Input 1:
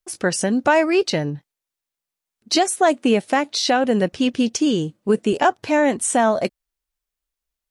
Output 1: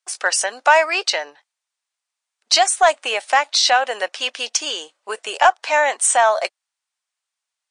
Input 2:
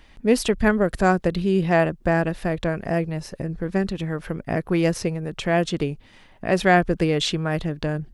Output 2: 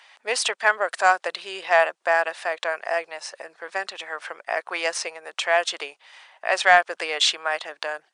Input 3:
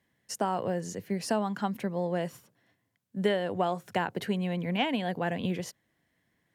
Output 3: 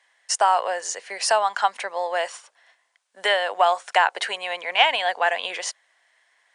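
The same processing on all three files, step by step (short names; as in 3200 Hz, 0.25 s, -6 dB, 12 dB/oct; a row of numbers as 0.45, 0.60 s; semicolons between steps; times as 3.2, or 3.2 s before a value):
HPF 710 Hz 24 dB/oct; in parallel at -10 dB: hard clip -15 dBFS; on the sum: MP3 112 kbps 22050 Hz; normalise peaks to -2 dBFS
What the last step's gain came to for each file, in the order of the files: +4.5, +3.5, +12.0 dB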